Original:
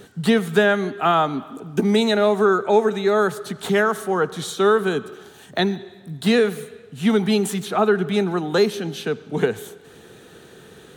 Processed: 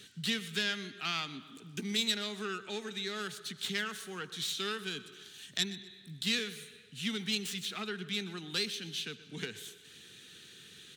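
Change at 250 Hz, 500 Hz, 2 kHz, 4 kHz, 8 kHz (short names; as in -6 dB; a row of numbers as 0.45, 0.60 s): -19.0, -25.0, -12.0, -3.5, -6.0 dB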